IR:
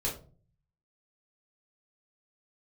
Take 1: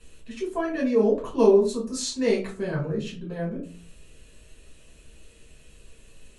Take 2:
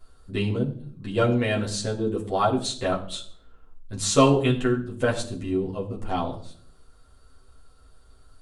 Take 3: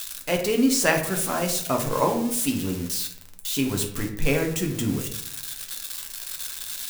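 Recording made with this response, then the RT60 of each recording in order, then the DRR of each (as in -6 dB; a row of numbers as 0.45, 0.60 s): 1; 0.40 s, not exponential, 0.75 s; -5.0, -5.0, 2.0 dB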